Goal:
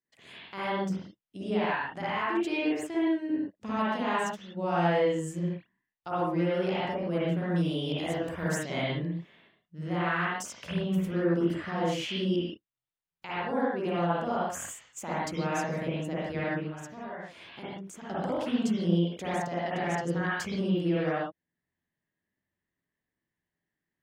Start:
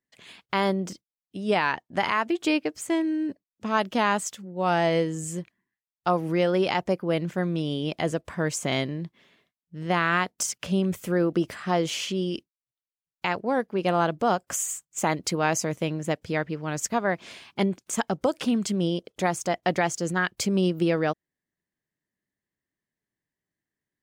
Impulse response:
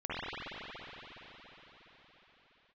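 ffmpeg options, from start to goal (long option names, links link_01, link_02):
-filter_complex "[0:a]asettb=1/sr,asplit=3[link_01][link_02][link_03];[link_01]atrim=end=7.494[link_04];[link_02]atrim=start=7.49:end=8.63,asetpts=PTS-STARTPTS,afade=type=in:duration=0.004:curve=qsin,afade=type=out:start_time=1.136:duration=0.004:curve=qsin,aemphasis=mode=production:type=50kf[link_05];[link_03]atrim=start=8.626[link_06];[link_04][link_05]acrossfade=duration=0.004:curve1=hsin:curve2=qsin[link_07];[link_07][link_06]acrossfade=duration=0.004:curve1=qsin:curve2=hsin,asettb=1/sr,asplit=3[link_08][link_09][link_10];[link_08]atrim=end=16.594[link_11];[link_09]atrim=start=16.59:end=18.09,asetpts=PTS-STARTPTS,afade=type=in:duration=0.004:curve=qsin,afade=type=out:start_time=1.496:duration=0.004:curve=qsin,acompressor=threshold=-39dB:ratio=6[link_12];[link_10]atrim=start=18.086[link_13];[link_11][link_12]acrossfade=duration=0.004:curve1=hsin:curve2=qsin[link_14];[link_14][link_13]acrossfade=duration=0.004:curve1=qsin:curve2=hsin,alimiter=limit=-20.5dB:level=0:latency=1:release=498[link_15];[1:a]atrim=start_sample=2205,afade=type=out:start_time=0.23:duration=0.01,atrim=end_sample=10584[link_16];[link_15][link_16]afir=irnorm=-1:irlink=0,volume=-2dB"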